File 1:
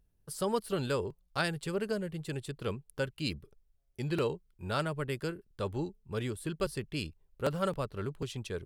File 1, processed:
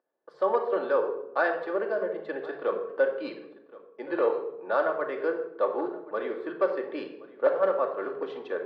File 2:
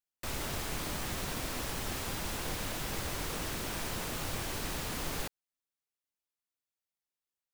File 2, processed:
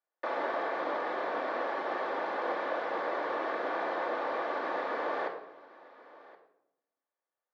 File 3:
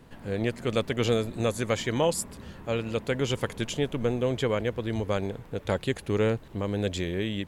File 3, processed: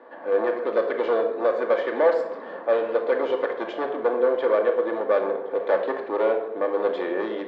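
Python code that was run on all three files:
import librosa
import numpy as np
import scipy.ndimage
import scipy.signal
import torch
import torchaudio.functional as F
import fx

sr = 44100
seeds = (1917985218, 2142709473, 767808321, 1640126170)

p1 = fx.high_shelf(x, sr, hz=2200.0, db=-10.5)
p2 = fx.rider(p1, sr, range_db=10, speed_s=0.5)
p3 = p1 + (p2 * 10.0 ** (0.0 / 20.0))
p4 = np.clip(p3, -10.0 ** (-19.0 / 20.0), 10.0 ** (-19.0 / 20.0))
p5 = fx.cabinet(p4, sr, low_hz=350.0, low_slope=24, high_hz=3600.0, hz=(480.0, 720.0, 1100.0, 1700.0, 2800.0), db=(9, 10, 8, 7, -8))
p6 = p5 + fx.echo_single(p5, sr, ms=1072, db=-20.5, dry=0)
p7 = fx.room_shoebox(p6, sr, seeds[0], volume_m3=2300.0, walls='furnished', distance_m=2.5)
y = p7 * 10.0 ** (-3.5 / 20.0)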